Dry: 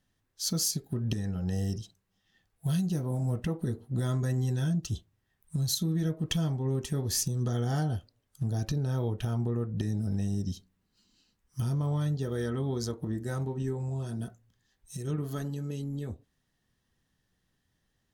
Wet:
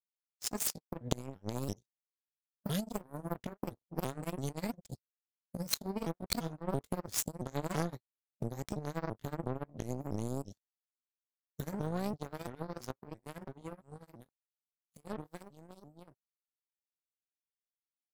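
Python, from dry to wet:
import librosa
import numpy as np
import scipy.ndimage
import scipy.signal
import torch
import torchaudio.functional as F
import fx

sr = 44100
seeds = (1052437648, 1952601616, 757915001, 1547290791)

y = fx.pitch_ramps(x, sr, semitones=6.5, every_ms=337)
y = fx.power_curve(y, sr, exponent=3.0)
y = y * librosa.db_to_amplitude(8.0)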